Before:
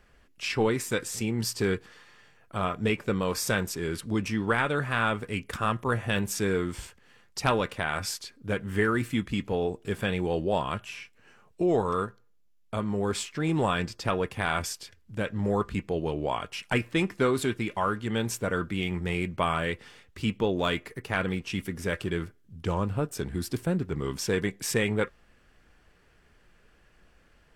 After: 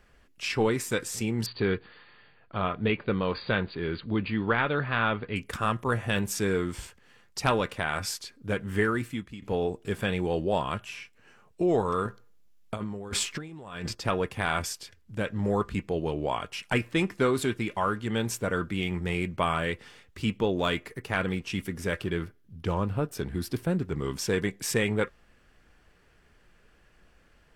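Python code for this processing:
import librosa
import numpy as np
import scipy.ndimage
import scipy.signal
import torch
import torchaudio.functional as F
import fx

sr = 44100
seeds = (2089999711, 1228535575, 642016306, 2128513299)

y = fx.brickwall_lowpass(x, sr, high_hz=4800.0, at=(1.46, 5.36))
y = fx.over_compress(y, sr, threshold_db=-33.0, ratio=-0.5, at=(12.05, 13.95))
y = fx.peak_eq(y, sr, hz=7600.0, db=-6.0, octaves=0.61, at=(21.99, 23.7))
y = fx.edit(y, sr, fx.fade_out_to(start_s=8.81, length_s=0.61, floor_db=-17.0), tone=tone)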